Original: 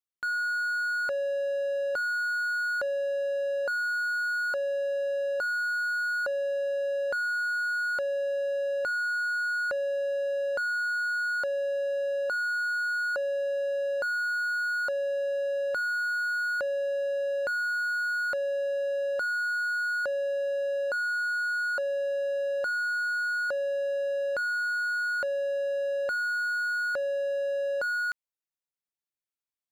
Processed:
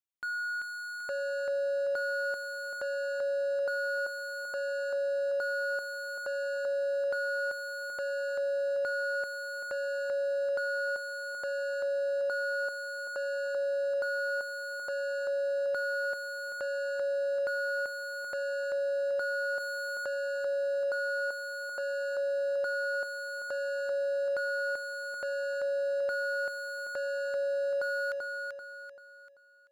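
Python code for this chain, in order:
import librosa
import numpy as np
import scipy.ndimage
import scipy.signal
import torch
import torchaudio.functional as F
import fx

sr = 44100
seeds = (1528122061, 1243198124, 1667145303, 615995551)

p1 = x + fx.echo_feedback(x, sr, ms=388, feedback_pct=40, wet_db=-4, dry=0)
p2 = fx.env_flatten(p1, sr, amount_pct=50, at=(19.6, 20.14))
y = p2 * librosa.db_to_amplitude(-5.0)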